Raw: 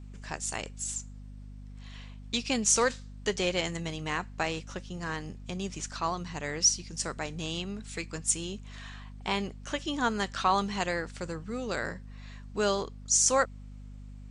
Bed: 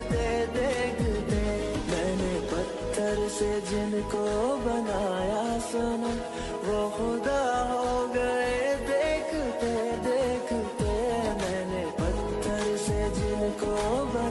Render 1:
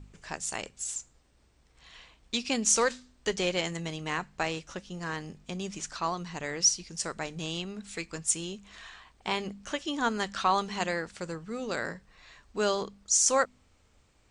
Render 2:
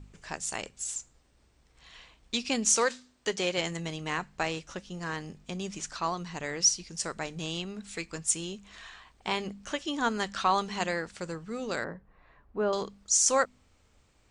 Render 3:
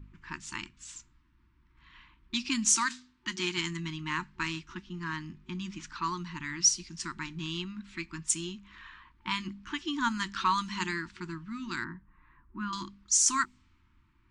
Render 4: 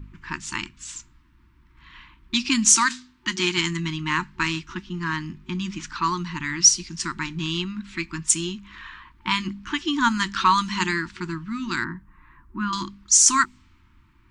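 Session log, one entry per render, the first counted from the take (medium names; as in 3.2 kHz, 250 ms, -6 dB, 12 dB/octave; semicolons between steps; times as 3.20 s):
de-hum 50 Hz, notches 5
2.70–3.58 s: high-pass 200 Hz 6 dB/octave; 11.84–12.73 s: low-pass 1.2 kHz
level-controlled noise filter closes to 2 kHz, open at -23 dBFS; FFT band-reject 370–880 Hz
trim +9 dB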